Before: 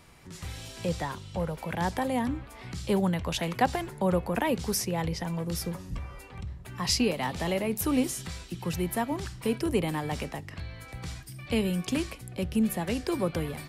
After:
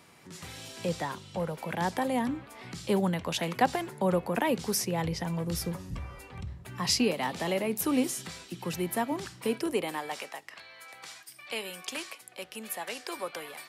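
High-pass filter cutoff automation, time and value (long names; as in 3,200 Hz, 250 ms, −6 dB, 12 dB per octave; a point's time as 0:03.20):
0:04.79 160 Hz
0:05.36 53 Hz
0:06.40 53 Hz
0:07.17 190 Hz
0:09.36 190 Hz
0:10.30 720 Hz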